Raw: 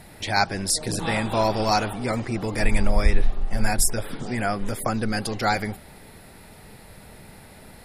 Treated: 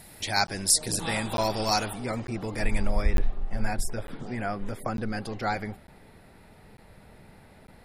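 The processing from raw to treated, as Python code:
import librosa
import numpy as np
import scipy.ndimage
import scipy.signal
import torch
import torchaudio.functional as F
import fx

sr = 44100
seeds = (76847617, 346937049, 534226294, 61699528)

y = fx.high_shelf(x, sr, hz=4300.0, db=fx.steps((0.0, 10.0), (2.0, -2.0), (3.01, -11.0)))
y = fx.buffer_crackle(y, sr, first_s=0.47, period_s=0.9, block=512, kind='zero')
y = y * 10.0 ** (-5.5 / 20.0)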